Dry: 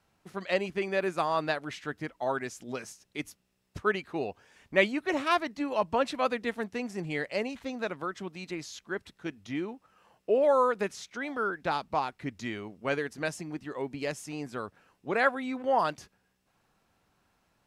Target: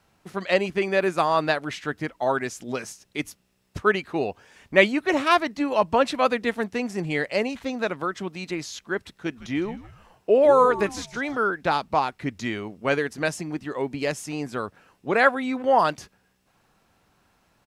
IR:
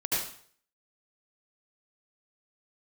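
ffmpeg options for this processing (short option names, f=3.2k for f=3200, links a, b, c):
-filter_complex "[0:a]asplit=3[a][b][c];[a]afade=t=out:st=9.35:d=0.02[d];[b]asplit=4[e][f][g][h];[f]adelay=157,afreqshift=-120,volume=-15dB[i];[g]adelay=314,afreqshift=-240,volume=-24.4dB[j];[h]adelay=471,afreqshift=-360,volume=-33.7dB[k];[e][i][j][k]amix=inputs=4:normalize=0,afade=t=in:st=9.35:d=0.02,afade=t=out:st=11.35:d=0.02[l];[c]afade=t=in:st=11.35:d=0.02[m];[d][l][m]amix=inputs=3:normalize=0,volume=7dB"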